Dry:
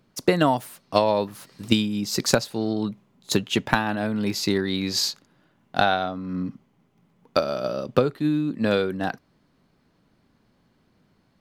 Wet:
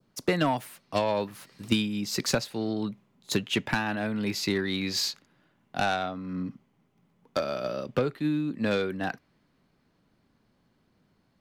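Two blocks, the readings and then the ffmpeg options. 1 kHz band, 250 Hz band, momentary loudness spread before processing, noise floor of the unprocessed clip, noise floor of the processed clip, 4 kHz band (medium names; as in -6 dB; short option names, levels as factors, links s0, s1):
-6.0 dB, -5.0 dB, 9 LU, -65 dBFS, -70 dBFS, -4.5 dB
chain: -filter_complex "[0:a]adynamicequalizer=threshold=0.01:dfrequency=2200:dqfactor=1.2:tfrequency=2200:tqfactor=1.2:attack=5:release=100:ratio=0.375:range=3:mode=boostabove:tftype=bell,acrossover=split=280[s0][s1];[s1]asoftclip=type=tanh:threshold=0.188[s2];[s0][s2]amix=inputs=2:normalize=0,volume=0.596"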